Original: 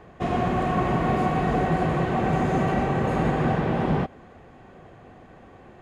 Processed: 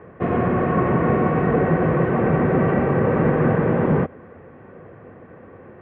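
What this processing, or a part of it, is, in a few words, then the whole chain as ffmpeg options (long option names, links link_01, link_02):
bass cabinet: -af "highpass=88,equalizer=frequency=94:width_type=q:width=4:gain=3,equalizer=frequency=490:width_type=q:width=4:gain=6,equalizer=frequency=750:width_type=q:width=4:gain=-8,lowpass=frequency=2100:width=0.5412,lowpass=frequency=2100:width=1.3066,volume=5dB"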